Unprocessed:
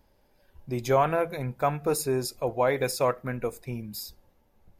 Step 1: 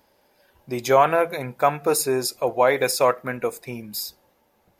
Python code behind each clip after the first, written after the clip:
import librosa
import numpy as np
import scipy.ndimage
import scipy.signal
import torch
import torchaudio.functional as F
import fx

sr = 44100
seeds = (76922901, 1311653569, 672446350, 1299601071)

y = fx.highpass(x, sr, hz=430.0, slope=6)
y = y * 10.0 ** (8.0 / 20.0)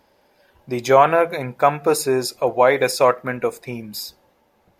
y = fx.high_shelf(x, sr, hz=7600.0, db=-9.0)
y = y * 10.0 ** (3.5 / 20.0)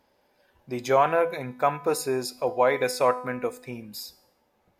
y = fx.comb_fb(x, sr, f0_hz=250.0, decay_s=0.7, harmonics='all', damping=0.0, mix_pct=60)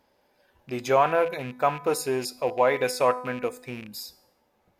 y = fx.rattle_buzz(x, sr, strikes_db=-39.0, level_db=-31.0)